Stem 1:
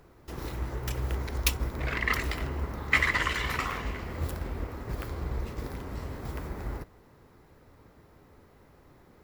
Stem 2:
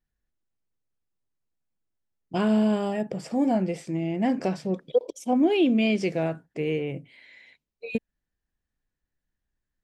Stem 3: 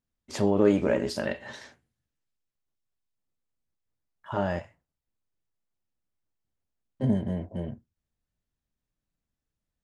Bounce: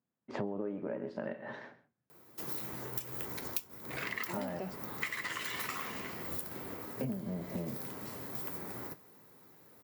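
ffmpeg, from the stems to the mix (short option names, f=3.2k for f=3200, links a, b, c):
-filter_complex "[0:a]aemphasis=mode=production:type=50fm,flanger=delay=9:depth=2.1:regen=-60:speed=0.36:shape=triangular,adelay=2100,volume=0dB[a];[1:a]adelay=150,volume=-5.5dB[b];[2:a]lowpass=1.5k,volume=2.5dB,asplit=3[c][d][e];[d]volume=-17.5dB[f];[e]apad=whole_len=440285[g];[b][g]sidechaingate=range=-33dB:threshold=-45dB:ratio=16:detection=peak[h];[f]aecho=0:1:131:1[i];[a][h][c][i]amix=inputs=4:normalize=0,highpass=f=130:w=0.5412,highpass=f=130:w=1.3066,acompressor=threshold=-34dB:ratio=10"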